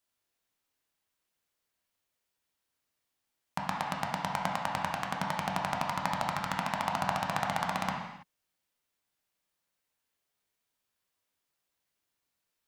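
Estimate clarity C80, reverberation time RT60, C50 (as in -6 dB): 5.0 dB, no single decay rate, 2.5 dB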